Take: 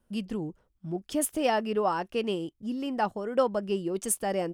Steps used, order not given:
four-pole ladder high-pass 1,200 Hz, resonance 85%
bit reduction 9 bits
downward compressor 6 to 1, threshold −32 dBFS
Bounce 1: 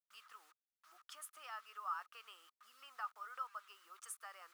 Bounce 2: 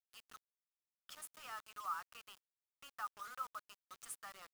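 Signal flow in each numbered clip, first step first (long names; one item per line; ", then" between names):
downward compressor, then bit reduction, then four-pole ladder high-pass
downward compressor, then four-pole ladder high-pass, then bit reduction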